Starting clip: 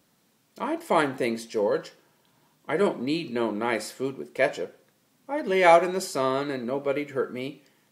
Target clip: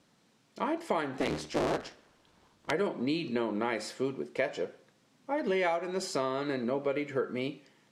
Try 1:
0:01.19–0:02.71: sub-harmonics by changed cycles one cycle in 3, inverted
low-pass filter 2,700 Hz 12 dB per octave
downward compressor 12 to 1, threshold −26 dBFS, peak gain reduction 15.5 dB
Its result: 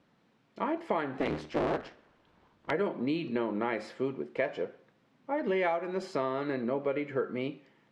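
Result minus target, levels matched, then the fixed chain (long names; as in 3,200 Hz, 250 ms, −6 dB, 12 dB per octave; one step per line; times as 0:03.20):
8,000 Hz band −14.0 dB
0:01.19–0:02.71: sub-harmonics by changed cycles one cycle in 3, inverted
low-pass filter 6,900 Hz 12 dB per octave
downward compressor 12 to 1, threshold −26 dBFS, peak gain reduction 15.5 dB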